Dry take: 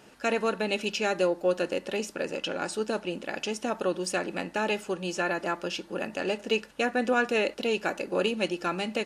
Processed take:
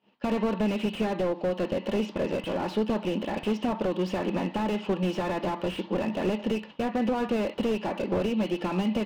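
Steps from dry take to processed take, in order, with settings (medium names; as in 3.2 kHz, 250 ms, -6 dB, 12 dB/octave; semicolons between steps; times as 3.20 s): expander -40 dBFS; cabinet simulation 130–4000 Hz, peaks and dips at 200 Hz +9 dB, 960 Hz +7 dB, 1.5 kHz -8 dB, 3 kHz +7 dB; compression 6:1, threshold -28 dBFS, peak gain reduction 9.5 dB; slew-rate limiter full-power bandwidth 14 Hz; trim +7.5 dB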